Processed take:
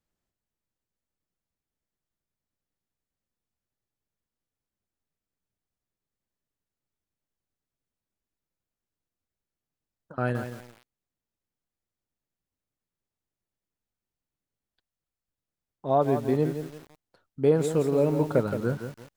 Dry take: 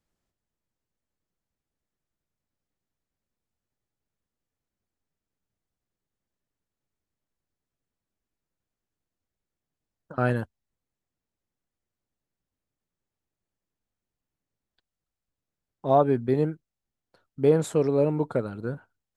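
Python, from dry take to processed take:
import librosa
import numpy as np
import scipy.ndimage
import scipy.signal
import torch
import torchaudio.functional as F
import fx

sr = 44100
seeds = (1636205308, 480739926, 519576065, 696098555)

y = fx.rider(x, sr, range_db=4, speed_s=0.5)
y = fx.echo_crushed(y, sr, ms=170, feedback_pct=35, bits=7, wet_db=-8.5)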